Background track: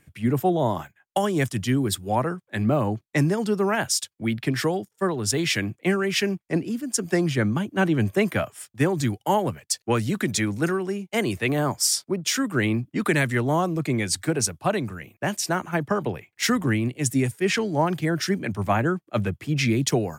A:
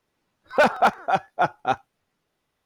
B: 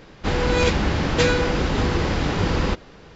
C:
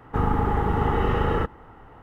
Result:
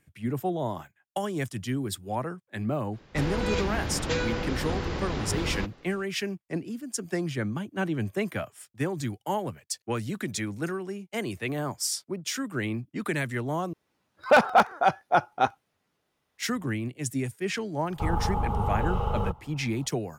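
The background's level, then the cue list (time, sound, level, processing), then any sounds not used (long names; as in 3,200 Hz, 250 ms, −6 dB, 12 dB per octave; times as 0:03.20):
background track −7.5 dB
0:02.91: mix in B −9.5 dB, fades 0.05 s
0:13.73: overwrite with A −0.5 dB + high-pass filter 48 Hz
0:17.86: mix in C −3 dB + phaser with its sweep stopped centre 750 Hz, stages 4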